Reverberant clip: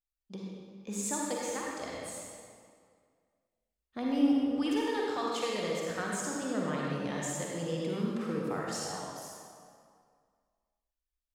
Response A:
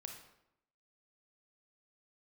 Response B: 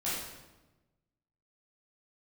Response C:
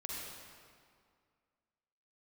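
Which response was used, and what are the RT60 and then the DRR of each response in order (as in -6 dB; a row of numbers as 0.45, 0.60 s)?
C; 0.80, 1.1, 2.1 s; 3.0, -10.0, -4.0 dB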